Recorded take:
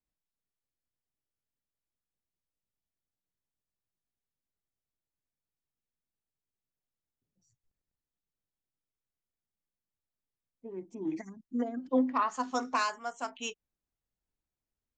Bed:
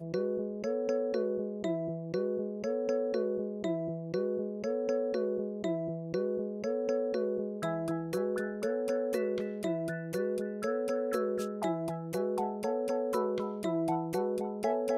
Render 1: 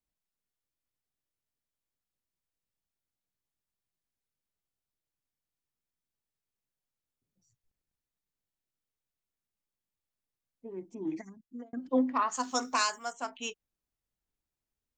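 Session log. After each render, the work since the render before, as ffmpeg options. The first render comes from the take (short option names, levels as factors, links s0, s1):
-filter_complex "[0:a]asplit=3[s0][s1][s2];[s0]afade=t=out:st=12.31:d=0.02[s3];[s1]aemphasis=mode=production:type=75fm,afade=t=in:st=12.31:d=0.02,afade=t=out:st=13.12:d=0.02[s4];[s2]afade=t=in:st=13.12:d=0.02[s5];[s3][s4][s5]amix=inputs=3:normalize=0,asplit=2[s6][s7];[s6]atrim=end=11.73,asetpts=PTS-STARTPTS,afade=t=out:st=10.9:d=0.83:c=qsin[s8];[s7]atrim=start=11.73,asetpts=PTS-STARTPTS,afade=t=in:d=0.004:c=hsin[s9];[s8][s9]concat=n=2:v=0:a=1"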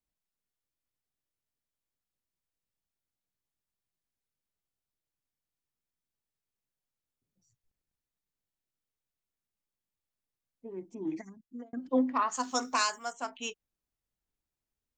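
-af anull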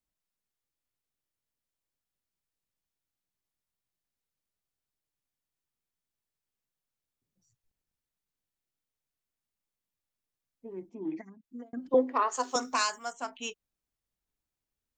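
-filter_complex "[0:a]asettb=1/sr,asplit=3[s0][s1][s2];[s0]atrim=end=10.894[s3];[s1]atrim=start=10.89:end=11.44,asetpts=PTS-STARTPTS,afade=t=in:d=0.004:c=qsin,afade=t=out:st=0.546:d=0.004:c=qsin,highpass=160,lowpass=3000[s4];[s2]atrim=start=11.436[s5];[s3][s4]acrossfade=d=0.004:c1=hsin:c2=qsin[s6];[s6][s5]acrossfade=d=0.004:c1=qsin:c2=hsin,asettb=1/sr,asplit=3[s7][s8][s9];[s7]atrim=end=11.944[s10];[s8]atrim=start=11.94:end=12.56,asetpts=PTS-STARTPTS,afade=t=in:d=0.004:c=qsin,afade=t=out:st=0.616:d=0.004:c=qsin,highpass=f=420:t=q:w=3.6[s11];[s9]atrim=start=12.556[s12];[s10][s11]acrossfade=d=0.004:c1=hsin:c2=qsin[s13];[s13][s12]acrossfade=d=0.004:c1=qsin:c2=hsin"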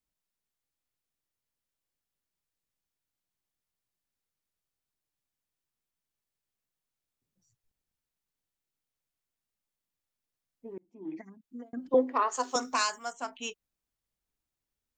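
-filter_complex "[0:a]asplit=2[s0][s1];[s0]atrim=end=10.78,asetpts=PTS-STARTPTS,afade=t=out:st=10.776:d=0.004:c=hsin[s2];[s1]atrim=start=10.78,asetpts=PTS-STARTPTS,afade=t=in:d=0.5[s3];[s2][s3]concat=n=2:v=0:a=1"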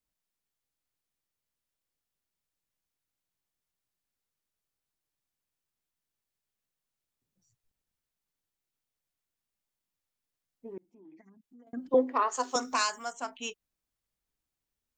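-filter_complex "[0:a]asettb=1/sr,asplit=3[s0][s1][s2];[s0]atrim=end=10.884[s3];[s1]atrim=start=10.88:end=11.67,asetpts=PTS-STARTPTS,afade=t=in:d=0.004:c=qsin,afade=t=out:st=0.786:d=0.004:c=qsin,acompressor=threshold=0.00141:ratio=3:attack=3.2:release=140:knee=1:detection=peak[s4];[s2]atrim=start=11.666[s5];[s3][s4]acrossfade=d=0.004:c1=hsin:c2=qsin[s6];[s6][s5]acrossfade=d=0.004:c1=qsin:c2=hsin,asettb=1/sr,asplit=3[s7][s8][s9];[s7]atrim=end=12.574[s10];[s8]atrim=start=12.57:end=13.2,asetpts=PTS-STARTPTS,afade=t=in:d=0.004:c=qsin,afade=t=out:st=0.626:d=0.004:c=qsin,acompressor=mode=upward:threshold=0.0141:ratio=2.5:attack=3.2:release=140:knee=2.83:detection=peak[s11];[s9]atrim=start=13.196[s12];[s10][s11]acrossfade=d=0.004:c1=hsin:c2=qsin[s13];[s13][s12]acrossfade=d=0.004:c1=qsin:c2=hsin"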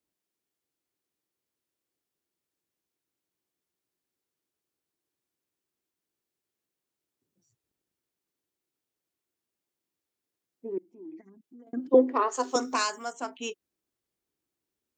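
-af "highpass=81,equalizer=f=350:t=o:w=0.86:g=12"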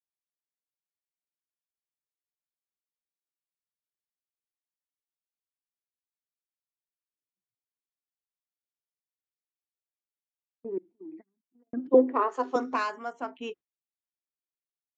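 -af "lowpass=2300,agate=range=0.0447:threshold=0.00447:ratio=16:detection=peak"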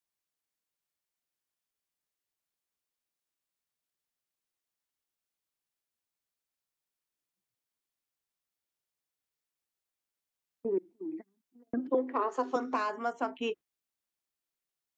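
-filter_complex "[0:a]acrossover=split=340|960|4200[s0][s1][s2][s3];[s0]acompressor=threshold=0.00891:ratio=4[s4];[s1]acompressor=threshold=0.0178:ratio=4[s5];[s2]acompressor=threshold=0.01:ratio=4[s6];[s3]acompressor=threshold=0.00112:ratio=4[s7];[s4][s5][s6][s7]amix=inputs=4:normalize=0,asplit=2[s8][s9];[s9]alimiter=level_in=1.5:limit=0.0631:level=0:latency=1:release=366,volume=0.668,volume=0.794[s10];[s8][s10]amix=inputs=2:normalize=0"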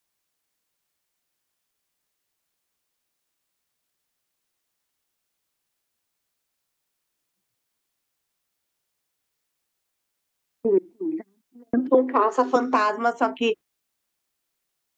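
-af "volume=3.55"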